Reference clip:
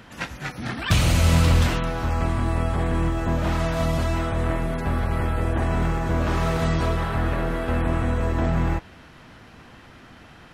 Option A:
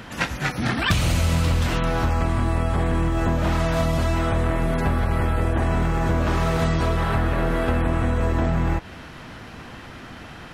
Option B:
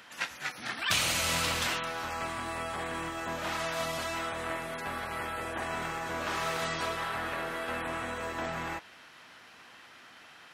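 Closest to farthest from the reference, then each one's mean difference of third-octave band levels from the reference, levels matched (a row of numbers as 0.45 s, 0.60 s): A, B; 2.5 dB, 7.0 dB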